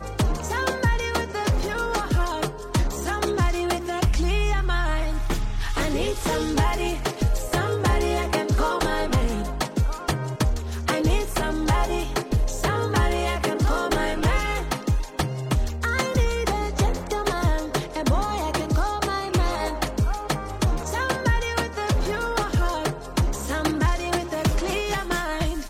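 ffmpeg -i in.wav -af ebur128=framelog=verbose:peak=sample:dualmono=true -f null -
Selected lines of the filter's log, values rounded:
Integrated loudness:
  I:         -21.9 LUFS
  Threshold: -31.9 LUFS
Loudness range:
  LRA:         1.3 LU
  Threshold: -41.8 LUFS
  LRA low:   -22.3 LUFS
  LRA high:  -21.0 LUFS
Sample peak:
  Peak:      -11.1 dBFS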